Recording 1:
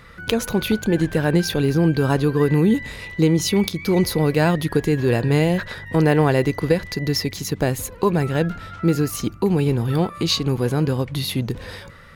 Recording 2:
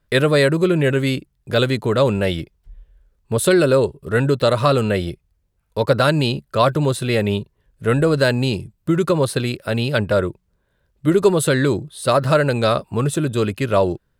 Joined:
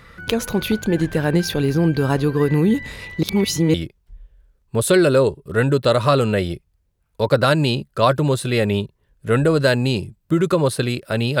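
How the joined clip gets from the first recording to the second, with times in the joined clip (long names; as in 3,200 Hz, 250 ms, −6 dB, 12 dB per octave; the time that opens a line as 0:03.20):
recording 1
0:03.23–0:03.74: reverse
0:03.74: continue with recording 2 from 0:02.31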